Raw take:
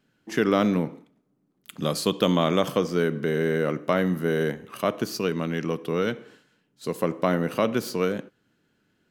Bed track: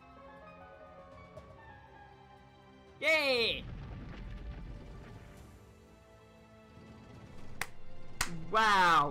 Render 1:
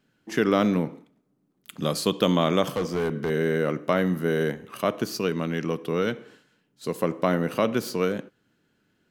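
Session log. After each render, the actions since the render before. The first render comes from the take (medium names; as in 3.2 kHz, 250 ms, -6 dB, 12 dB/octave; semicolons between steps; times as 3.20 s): 2.70–3.30 s: hard clipper -21.5 dBFS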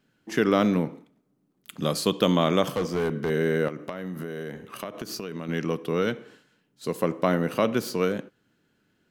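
3.68–5.49 s: compression 16:1, threshold -29 dBFS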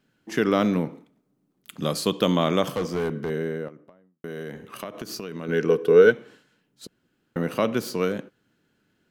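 2.89–4.24 s: studio fade out; 5.42–6.10 s: small resonant body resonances 440/1500 Hz, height 14 dB -> 17 dB, ringing for 50 ms; 6.87–7.36 s: room tone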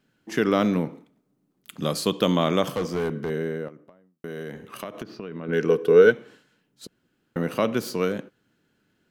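5.03–5.53 s: distance through air 330 m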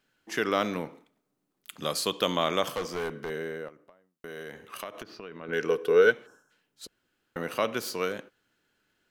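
6.26–6.51 s: time-frequency box 1.7–5.2 kHz -21 dB; peaking EQ 170 Hz -12.5 dB 2.6 oct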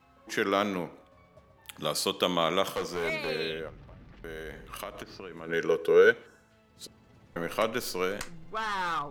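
add bed track -5.5 dB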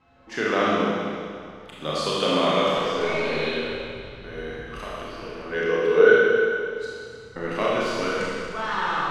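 distance through air 100 m; Schroeder reverb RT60 2.2 s, combs from 26 ms, DRR -6.5 dB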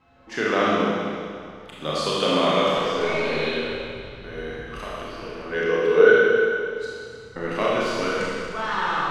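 trim +1 dB; peak limiter -3 dBFS, peak gain reduction 1.5 dB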